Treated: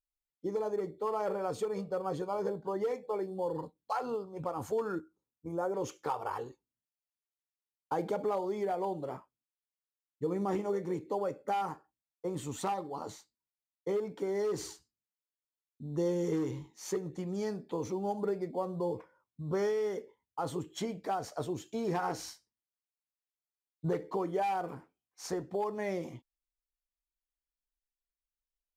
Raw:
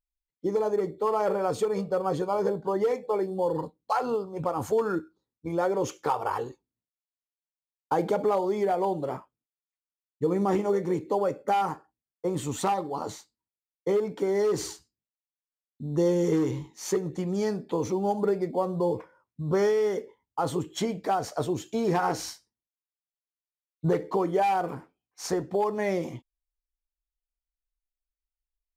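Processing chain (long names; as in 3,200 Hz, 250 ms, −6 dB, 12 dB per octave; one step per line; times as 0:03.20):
0:05.00–0:05.74: flat-topped bell 3,000 Hz −11.5 dB
level −7.5 dB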